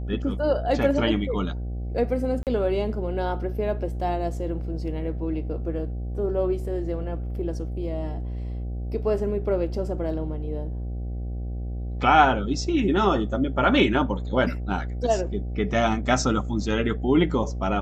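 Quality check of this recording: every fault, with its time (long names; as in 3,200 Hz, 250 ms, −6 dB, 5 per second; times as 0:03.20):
mains buzz 60 Hz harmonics 13 −30 dBFS
0:02.43–0:02.47: drop-out 38 ms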